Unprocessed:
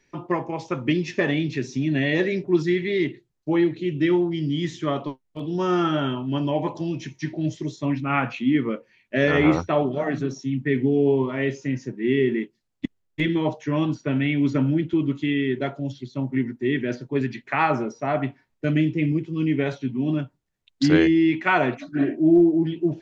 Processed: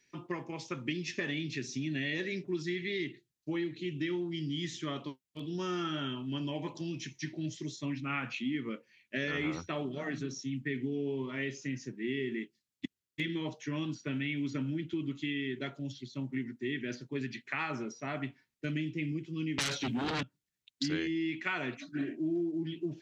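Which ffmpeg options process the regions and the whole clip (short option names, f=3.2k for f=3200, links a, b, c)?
-filter_complex "[0:a]asettb=1/sr,asplit=3[a][b][c];[a]atrim=end=19.584[d];[b]atrim=start=19.58:end=20.23,asetpts=PTS-STARTPTS,afade=t=in:d=0.004:c=qsin,afade=t=out:st=0.646:d=0.004:c=qsin,highpass=f=97:w=0.5412,highpass=f=97:w=1.3066,lowshelf=f=230:g=-8,aeval=exprs='0.178*sin(PI/2*5.01*val(0)/0.178)':c=same[e];[c]atrim=start=20.226[f];[d][e]acrossfade=d=0.004:c1=hsin:c2=qsin[g];[g][f]acrossfade=d=0.004:c1=qsin:c2=hsin,highpass=f=330:p=1,equalizer=f=720:w=0.63:g=-15,acompressor=threshold=-32dB:ratio=3"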